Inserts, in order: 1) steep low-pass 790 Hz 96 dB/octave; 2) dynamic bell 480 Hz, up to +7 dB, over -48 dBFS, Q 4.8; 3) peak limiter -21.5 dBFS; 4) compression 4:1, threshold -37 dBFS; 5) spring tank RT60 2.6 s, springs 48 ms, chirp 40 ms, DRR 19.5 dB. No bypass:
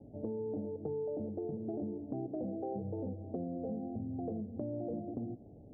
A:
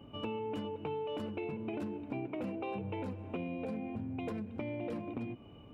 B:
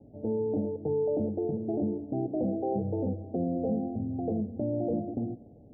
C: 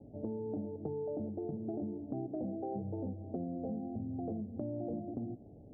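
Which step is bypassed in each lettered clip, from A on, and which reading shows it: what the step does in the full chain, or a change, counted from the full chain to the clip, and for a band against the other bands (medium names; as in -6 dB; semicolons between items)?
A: 1, 1 kHz band +5.5 dB; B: 4, mean gain reduction 7.0 dB; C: 2, 500 Hz band -2.0 dB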